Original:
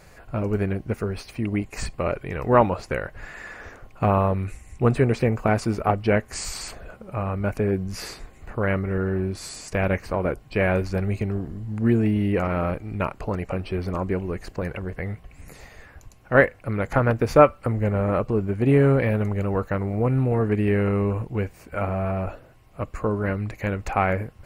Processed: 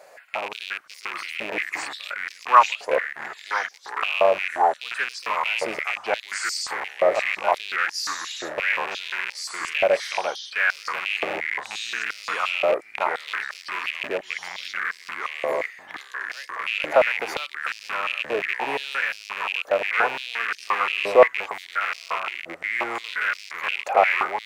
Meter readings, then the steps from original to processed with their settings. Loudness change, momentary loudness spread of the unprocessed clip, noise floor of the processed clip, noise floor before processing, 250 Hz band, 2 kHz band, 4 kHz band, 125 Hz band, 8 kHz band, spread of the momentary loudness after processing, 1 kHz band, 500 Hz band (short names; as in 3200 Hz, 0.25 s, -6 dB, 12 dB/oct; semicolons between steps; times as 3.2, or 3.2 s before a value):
-0.5 dB, 14 LU, -47 dBFS, -50 dBFS, -18.5 dB, +7.5 dB, +11.5 dB, under -30 dB, +3.0 dB, 11 LU, +4.0 dB, -1.0 dB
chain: rattling part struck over -29 dBFS, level -19 dBFS; echoes that change speed 0.505 s, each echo -3 st, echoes 2; stepped high-pass 5.7 Hz 600–5000 Hz; gain -1.5 dB